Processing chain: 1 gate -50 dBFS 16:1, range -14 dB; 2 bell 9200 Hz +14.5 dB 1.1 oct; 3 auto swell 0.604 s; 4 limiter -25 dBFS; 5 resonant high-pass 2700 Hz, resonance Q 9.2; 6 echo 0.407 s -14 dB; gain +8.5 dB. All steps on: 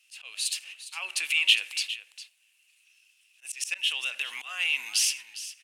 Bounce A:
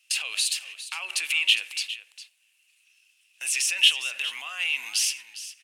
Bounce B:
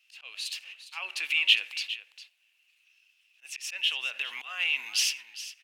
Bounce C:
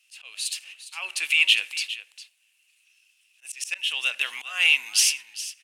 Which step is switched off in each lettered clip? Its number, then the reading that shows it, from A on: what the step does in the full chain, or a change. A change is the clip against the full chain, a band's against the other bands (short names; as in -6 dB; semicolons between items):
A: 3, crest factor change -1.5 dB; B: 2, 8 kHz band -4.5 dB; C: 4, mean gain reduction 2.0 dB